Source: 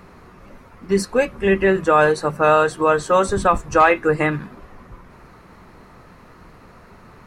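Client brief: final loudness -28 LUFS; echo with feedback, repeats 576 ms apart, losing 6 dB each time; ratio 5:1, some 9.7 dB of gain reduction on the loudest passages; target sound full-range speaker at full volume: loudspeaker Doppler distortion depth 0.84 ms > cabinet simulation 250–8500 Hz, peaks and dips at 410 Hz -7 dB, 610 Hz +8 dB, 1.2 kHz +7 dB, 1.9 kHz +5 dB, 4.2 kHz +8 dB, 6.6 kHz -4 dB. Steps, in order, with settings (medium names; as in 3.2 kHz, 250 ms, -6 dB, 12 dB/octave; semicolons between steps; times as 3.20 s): compression 5:1, threshold -21 dBFS; feedback delay 576 ms, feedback 50%, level -6 dB; loudspeaker Doppler distortion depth 0.84 ms; cabinet simulation 250–8500 Hz, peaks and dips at 410 Hz -7 dB, 610 Hz +8 dB, 1.2 kHz +7 dB, 1.9 kHz +5 dB, 4.2 kHz +8 dB, 6.6 kHz -4 dB; trim -6 dB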